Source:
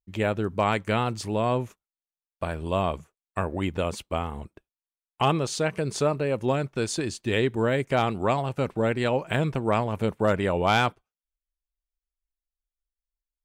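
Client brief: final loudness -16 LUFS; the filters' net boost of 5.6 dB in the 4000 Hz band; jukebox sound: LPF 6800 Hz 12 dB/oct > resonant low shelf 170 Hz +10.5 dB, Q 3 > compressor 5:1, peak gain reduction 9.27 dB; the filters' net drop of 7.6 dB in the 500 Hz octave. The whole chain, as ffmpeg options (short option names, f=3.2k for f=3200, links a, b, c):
-af "lowpass=6.8k,lowshelf=f=170:t=q:w=3:g=10.5,equalizer=f=500:t=o:g=-8,equalizer=f=4k:t=o:g=8,acompressor=threshold=-20dB:ratio=5,volume=9dB"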